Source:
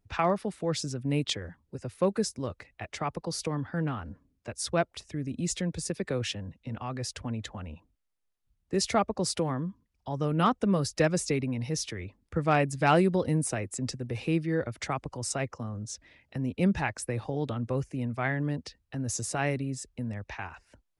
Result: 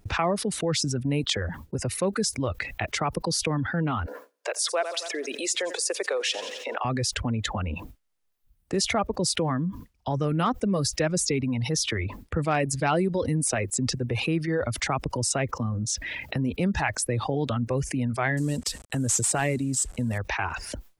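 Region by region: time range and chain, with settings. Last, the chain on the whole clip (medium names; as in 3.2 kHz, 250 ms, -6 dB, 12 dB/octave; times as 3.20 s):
4.06–6.85 s: steep high-pass 420 Hz + feedback delay 87 ms, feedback 50%, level -15.5 dB
18.37–20.18 s: CVSD coder 64 kbps + peaking EQ 8 kHz +14.5 dB 0.57 oct
whole clip: gate with hold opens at -57 dBFS; reverb removal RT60 1.1 s; level flattener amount 70%; trim -1.5 dB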